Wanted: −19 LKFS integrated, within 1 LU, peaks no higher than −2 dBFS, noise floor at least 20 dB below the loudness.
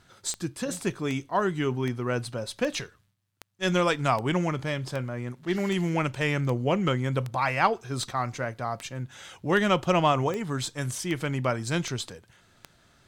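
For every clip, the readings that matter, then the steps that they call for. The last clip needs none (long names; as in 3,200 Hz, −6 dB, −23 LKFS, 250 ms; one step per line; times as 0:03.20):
number of clicks 17; integrated loudness −28.0 LKFS; sample peak −9.0 dBFS; target loudness −19.0 LKFS
→ click removal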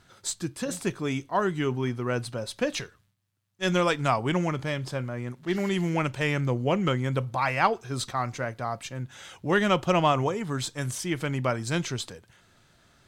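number of clicks 0; integrated loudness −28.0 LKFS; sample peak −9.0 dBFS; target loudness −19.0 LKFS
→ level +9 dB
brickwall limiter −2 dBFS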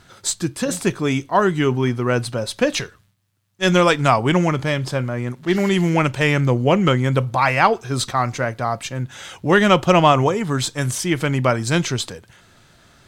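integrated loudness −19.0 LKFS; sample peak −2.0 dBFS; background noise floor −54 dBFS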